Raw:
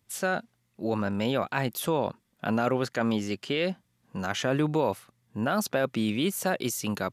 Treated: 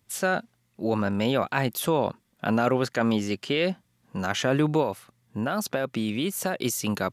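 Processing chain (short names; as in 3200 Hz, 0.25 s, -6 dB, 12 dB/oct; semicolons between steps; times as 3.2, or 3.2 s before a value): 4.82–6.62 compressor 2.5:1, threshold -28 dBFS, peak gain reduction 5.5 dB; gain +3 dB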